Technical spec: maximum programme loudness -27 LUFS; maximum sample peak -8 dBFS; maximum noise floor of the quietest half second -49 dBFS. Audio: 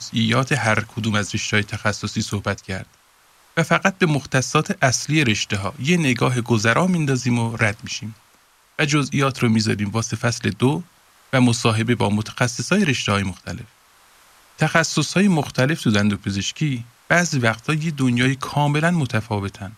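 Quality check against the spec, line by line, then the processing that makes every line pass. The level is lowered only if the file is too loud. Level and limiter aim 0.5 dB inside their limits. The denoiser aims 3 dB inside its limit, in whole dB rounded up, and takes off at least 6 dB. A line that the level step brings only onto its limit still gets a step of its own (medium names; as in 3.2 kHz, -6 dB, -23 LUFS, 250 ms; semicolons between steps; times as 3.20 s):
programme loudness -20.0 LUFS: fail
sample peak -2.5 dBFS: fail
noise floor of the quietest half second -56 dBFS: pass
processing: trim -7.5 dB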